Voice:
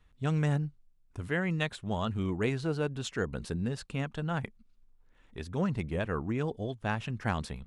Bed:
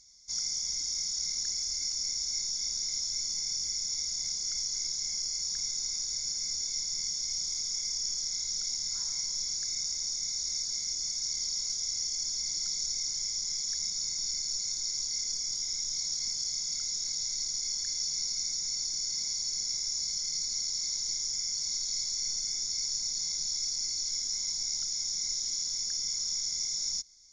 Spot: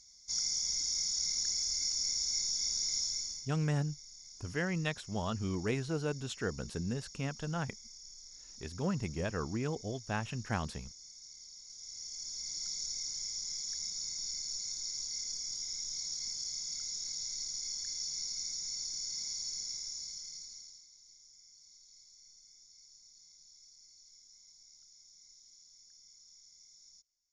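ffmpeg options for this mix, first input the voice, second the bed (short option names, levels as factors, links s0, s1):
-filter_complex "[0:a]adelay=3250,volume=0.668[s0];[1:a]volume=3.98,afade=t=out:st=3.02:d=0.47:silence=0.125893,afade=t=in:st=11.66:d=1.02:silence=0.223872,afade=t=out:st=19.47:d=1.39:silence=0.0944061[s1];[s0][s1]amix=inputs=2:normalize=0"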